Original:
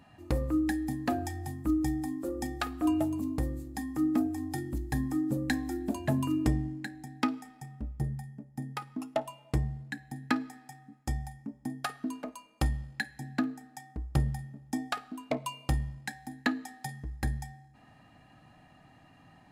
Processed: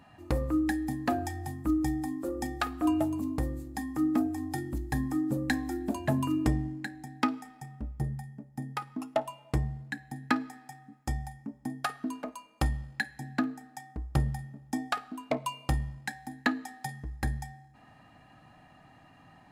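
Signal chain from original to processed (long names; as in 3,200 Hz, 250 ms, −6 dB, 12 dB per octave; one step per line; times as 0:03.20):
parametric band 1,100 Hz +3.5 dB 1.8 octaves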